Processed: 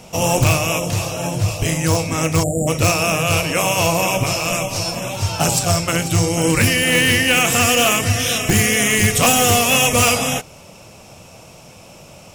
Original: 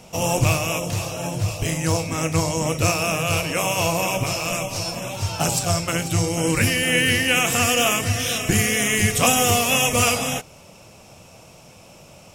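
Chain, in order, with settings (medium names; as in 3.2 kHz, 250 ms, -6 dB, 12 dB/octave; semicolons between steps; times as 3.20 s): spectral selection erased 2.43–2.68 s, 780–6900 Hz; in parallel at -7.5 dB: integer overflow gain 10.5 dB; on the sum: trim +1.5 dB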